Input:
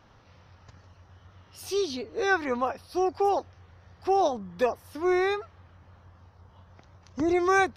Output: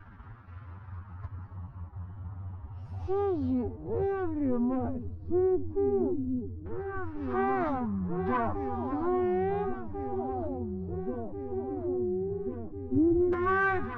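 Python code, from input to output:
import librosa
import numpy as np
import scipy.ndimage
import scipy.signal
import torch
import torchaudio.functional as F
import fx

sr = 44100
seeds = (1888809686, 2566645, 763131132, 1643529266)

p1 = np.where(x < 0.0, 10.0 ** (-12.0 / 20.0) * x, x)
p2 = fx.rider(p1, sr, range_db=10, speed_s=0.5)
p3 = fx.low_shelf(p2, sr, hz=290.0, db=9.5)
p4 = fx.cheby_harmonics(p3, sr, harmonics=(3, 5), levels_db=(-19, -7), full_scale_db=-7.5)
p5 = fx.peak_eq(p4, sr, hz=530.0, db=-14.0, octaves=1.1)
p6 = p5 + fx.echo_opening(p5, sr, ms=774, hz=200, octaves=2, feedback_pct=70, wet_db=-3, dry=0)
p7 = fx.leveller(p6, sr, passes=1)
p8 = fx.filter_lfo_lowpass(p7, sr, shape='saw_down', hz=0.27, low_hz=340.0, high_hz=1500.0, q=1.8)
p9 = fx.stretch_vocoder(p8, sr, factor=1.8)
y = p9 * 10.0 ** (-7.0 / 20.0)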